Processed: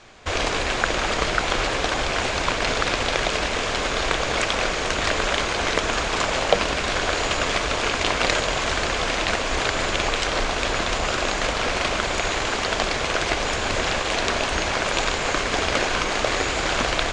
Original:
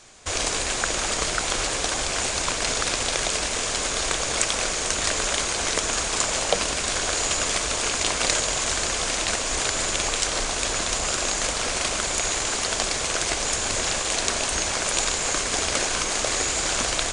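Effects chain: LPF 3300 Hz 12 dB/oct; gain +5 dB

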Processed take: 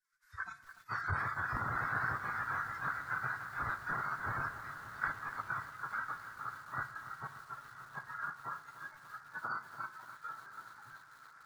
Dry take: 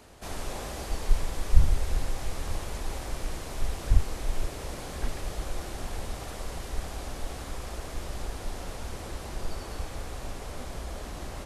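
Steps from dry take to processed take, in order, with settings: added harmonics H 2 -16 dB, 4 -28 dB, 5 -16 dB, 8 -37 dB, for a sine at -2.5 dBFS; spectral gate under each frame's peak -25 dB weak; EQ curve 120 Hz 0 dB, 200 Hz -16 dB, 560 Hz -19 dB, 880 Hz -10 dB, 1500 Hz +8 dB, 2900 Hz -26 dB, 4900 Hz -16 dB, 10000 Hz -23 dB; in parallel at -1 dB: compressor, threshold -59 dBFS, peak gain reduction 20.5 dB; on the sum: spectral noise reduction 21 dB; diffused feedback echo 1.102 s, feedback 48%, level -14 dB; on a send at -14 dB: reverb RT60 0.85 s, pre-delay 46 ms; on the sum: lo-fi delay 0.29 s, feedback 80%, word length 10-bit, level -12 dB; gain +6 dB

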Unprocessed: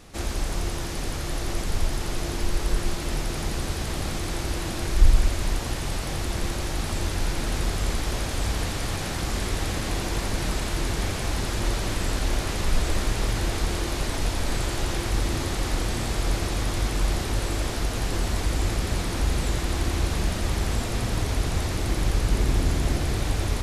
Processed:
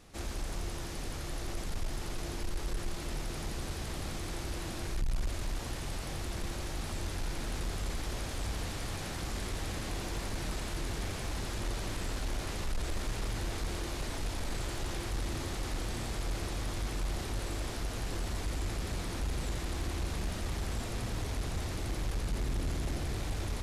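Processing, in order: soft clip -18 dBFS, distortion -12 dB; gain -8.5 dB

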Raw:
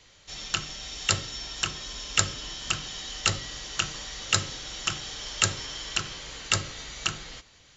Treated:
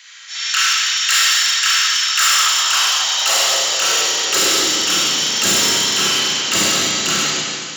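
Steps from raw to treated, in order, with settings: tilt +2 dB/oct; transient shaper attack -7 dB, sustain +7 dB; Schroeder reverb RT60 2.1 s, combs from 33 ms, DRR -5 dB; overloaded stage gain 20 dB; high-pass sweep 1600 Hz -> 230 Hz, 1.99–5.21; gain +8 dB

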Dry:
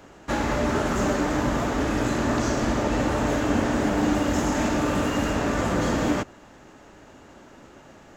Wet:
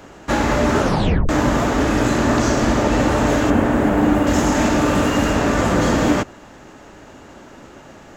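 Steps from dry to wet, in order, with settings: 0.8 tape stop 0.49 s; 3.5–4.27 bell 5400 Hz -12 dB 1.5 oct; gain +7 dB

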